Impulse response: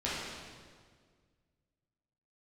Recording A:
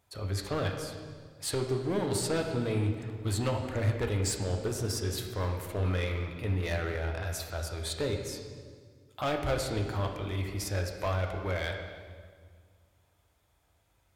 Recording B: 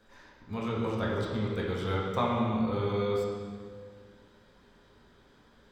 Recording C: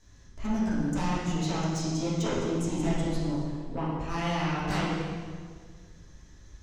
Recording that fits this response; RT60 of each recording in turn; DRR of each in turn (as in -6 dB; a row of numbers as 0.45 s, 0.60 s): C; 1.8 s, 1.8 s, 1.8 s; 2.5 dB, -4.5 dB, -9.5 dB